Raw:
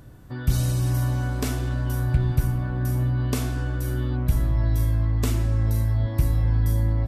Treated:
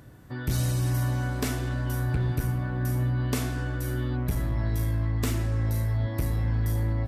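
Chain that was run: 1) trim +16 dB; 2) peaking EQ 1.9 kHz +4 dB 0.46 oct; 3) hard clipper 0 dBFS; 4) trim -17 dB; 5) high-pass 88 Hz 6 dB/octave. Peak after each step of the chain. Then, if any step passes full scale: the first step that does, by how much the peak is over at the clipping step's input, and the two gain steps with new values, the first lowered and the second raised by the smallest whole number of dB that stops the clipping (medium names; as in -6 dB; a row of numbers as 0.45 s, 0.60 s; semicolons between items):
+6.0 dBFS, +6.0 dBFS, 0.0 dBFS, -17.0 dBFS, -14.0 dBFS; step 1, 6.0 dB; step 1 +10 dB, step 4 -11 dB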